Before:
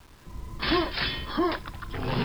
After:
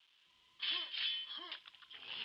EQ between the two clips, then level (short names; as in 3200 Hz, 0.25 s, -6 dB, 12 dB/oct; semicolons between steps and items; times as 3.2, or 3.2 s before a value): band-pass 3100 Hz, Q 5.7; -1.5 dB